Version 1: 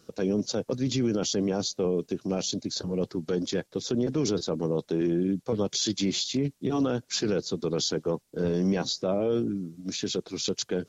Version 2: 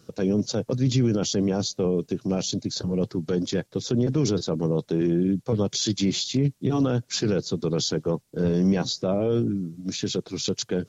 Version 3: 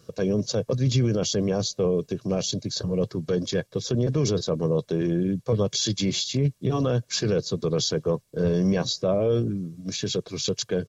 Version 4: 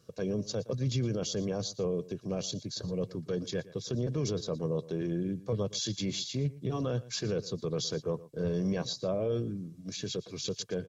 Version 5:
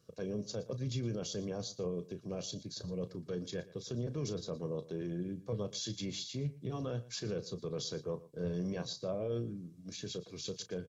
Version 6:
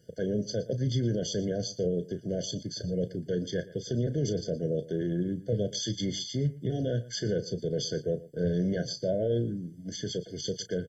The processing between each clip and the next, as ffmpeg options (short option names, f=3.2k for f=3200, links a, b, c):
-af "equalizer=f=120:t=o:w=1.1:g=8.5,volume=1.5dB"
-af "aecho=1:1:1.8:0.44"
-af "aecho=1:1:117:0.119,volume=-8.5dB"
-filter_complex "[0:a]asplit=2[a][b];[b]adelay=34,volume=-12dB[c];[a][c]amix=inputs=2:normalize=0,volume=-6dB"
-af "afftfilt=real='re*eq(mod(floor(b*sr/1024/720),2),0)':imag='im*eq(mod(floor(b*sr/1024/720),2),0)':win_size=1024:overlap=0.75,volume=8.5dB"